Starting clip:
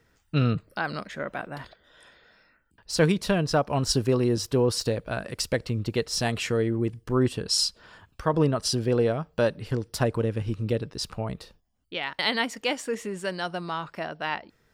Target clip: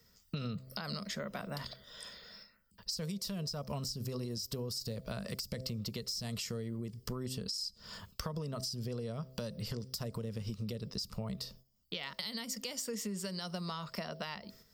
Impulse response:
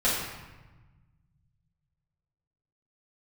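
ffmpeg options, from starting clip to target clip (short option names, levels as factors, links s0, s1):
-filter_complex "[0:a]aemphasis=mode=production:type=50fm,bandreject=f=129.7:t=h:w=4,bandreject=f=259.4:t=h:w=4,bandreject=f=389.1:t=h:w=4,bandreject=f=518.8:t=h:w=4,bandreject=f=648.5:t=h:w=4,agate=range=0.447:threshold=0.00126:ratio=16:detection=peak,equalizer=f=200:t=o:w=0.33:g=8,equalizer=f=315:t=o:w=0.33:g=-12,equalizer=f=800:t=o:w=0.33:g=-8,equalizer=f=1600:t=o:w=0.33:g=-8,equalizer=f=2500:t=o:w=0.33:g=-5,equalizer=f=5000:t=o:w=0.33:g=10,equalizer=f=10000:t=o:w=0.33:g=-10,acrossover=split=220|5800[s0][s1][s2];[s0]acompressor=threshold=0.0282:ratio=4[s3];[s1]acompressor=threshold=0.0251:ratio=4[s4];[s2]acompressor=threshold=0.0398:ratio=4[s5];[s3][s4][s5]amix=inputs=3:normalize=0,alimiter=limit=0.0794:level=0:latency=1:release=132,acompressor=threshold=0.01:ratio=6,volume=1.5"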